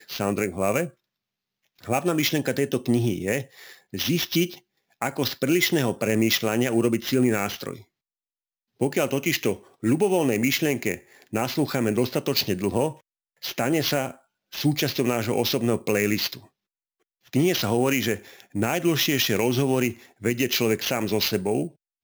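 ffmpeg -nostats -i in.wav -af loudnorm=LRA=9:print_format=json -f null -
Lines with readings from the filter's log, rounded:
"input_i" : "-24.2",
"input_tp" : "-8.2",
"input_lra" : "2.5",
"input_thresh" : "-34.6",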